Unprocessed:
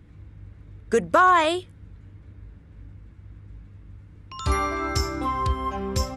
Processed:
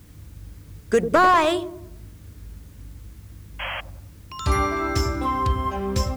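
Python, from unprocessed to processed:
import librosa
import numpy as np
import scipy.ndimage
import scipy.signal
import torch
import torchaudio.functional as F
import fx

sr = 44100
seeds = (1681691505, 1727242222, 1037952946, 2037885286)

y = fx.spec_paint(x, sr, seeds[0], shape='noise', start_s=3.59, length_s=0.22, low_hz=510.0, high_hz=3300.0, level_db=-32.0)
y = fx.echo_wet_lowpass(y, sr, ms=96, feedback_pct=45, hz=410.0, wet_db=-5.5)
y = fx.quant_dither(y, sr, seeds[1], bits=10, dither='triangular')
y = fx.slew_limit(y, sr, full_power_hz=190.0)
y = y * librosa.db_to_amplitude(2.0)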